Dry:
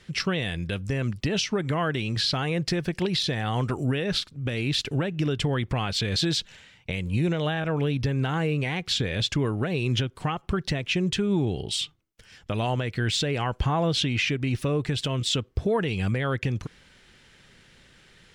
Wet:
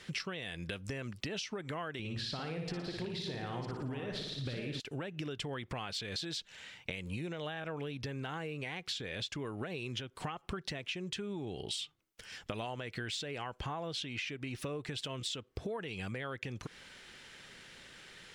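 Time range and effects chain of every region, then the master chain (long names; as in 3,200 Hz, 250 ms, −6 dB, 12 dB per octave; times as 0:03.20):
0:01.99–0:04.80: delay that plays each chunk backwards 588 ms, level −7.5 dB + spectral tilt −2 dB per octave + flutter between parallel walls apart 9.9 metres, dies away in 0.65 s
whole clip: low-shelf EQ 210 Hz −11.5 dB; downward compressor 16 to 1, threshold −39 dBFS; level +3 dB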